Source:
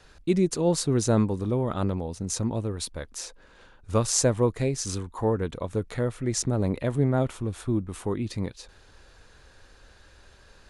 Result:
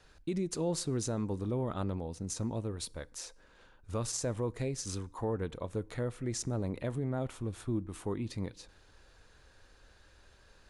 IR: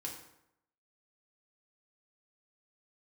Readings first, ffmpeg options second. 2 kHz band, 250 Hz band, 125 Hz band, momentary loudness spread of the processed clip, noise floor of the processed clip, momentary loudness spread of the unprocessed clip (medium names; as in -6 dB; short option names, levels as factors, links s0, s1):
-9.0 dB, -9.5 dB, -9.0 dB, 7 LU, -62 dBFS, 10 LU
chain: -filter_complex "[0:a]alimiter=limit=0.126:level=0:latency=1:release=60,asplit=2[s0][s1];[1:a]atrim=start_sample=2205[s2];[s1][s2]afir=irnorm=-1:irlink=0,volume=0.126[s3];[s0][s3]amix=inputs=2:normalize=0,volume=0.422"